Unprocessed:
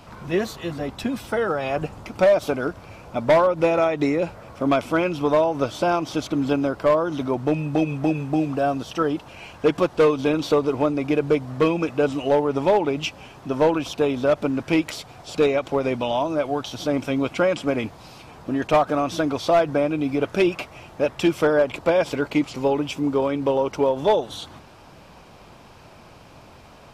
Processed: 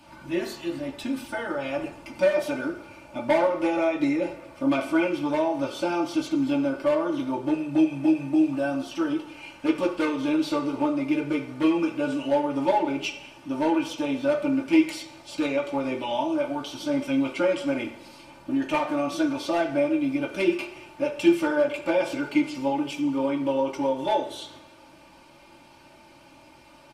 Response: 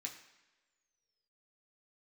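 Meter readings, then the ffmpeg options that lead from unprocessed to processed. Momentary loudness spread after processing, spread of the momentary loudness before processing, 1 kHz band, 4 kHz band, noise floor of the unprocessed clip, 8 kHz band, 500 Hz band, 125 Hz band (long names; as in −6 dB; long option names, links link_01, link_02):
9 LU, 9 LU, −4.5 dB, −3.5 dB, −47 dBFS, −3.5 dB, −6.0 dB, −10.5 dB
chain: -filter_complex "[0:a]aecho=1:1:3.4:0.51[link_01];[1:a]atrim=start_sample=2205,asetrate=52920,aresample=44100[link_02];[link_01][link_02]afir=irnorm=-1:irlink=0"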